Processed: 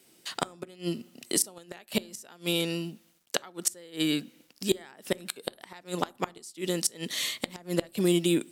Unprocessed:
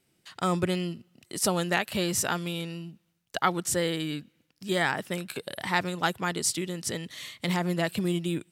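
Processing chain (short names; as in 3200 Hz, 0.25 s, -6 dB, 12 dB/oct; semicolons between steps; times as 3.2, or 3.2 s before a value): HPF 300 Hz 12 dB/oct; bell 1400 Hz -7 dB 2.5 oct; in parallel at +1 dB: compressor 6:1, threshold -38 dBFS, peak gain reduction 14 dB; on the sum: requantised 12-bit, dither none; flipped gate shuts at -18 dBFS, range -27 dB; on a send at -21 dB: reverb RT60 0.40 s, pre-delay 4 ms; on the sum: gain +7 dB; Opus 256 kbps 48000 Hz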